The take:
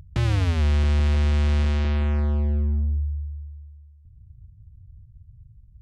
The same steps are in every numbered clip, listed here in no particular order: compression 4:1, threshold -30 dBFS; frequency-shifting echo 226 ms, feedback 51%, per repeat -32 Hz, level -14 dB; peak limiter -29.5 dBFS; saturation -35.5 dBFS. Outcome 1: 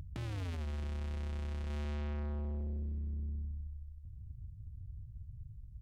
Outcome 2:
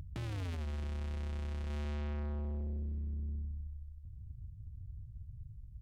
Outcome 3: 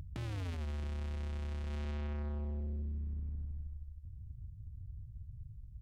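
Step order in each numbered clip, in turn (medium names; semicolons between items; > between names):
compression > peak limiter > frequency-shifting echo > saturation; peak limiter > frequency-shifting echo > saturation > compression; frequency-shifting echo > compression > peak limiter > saturation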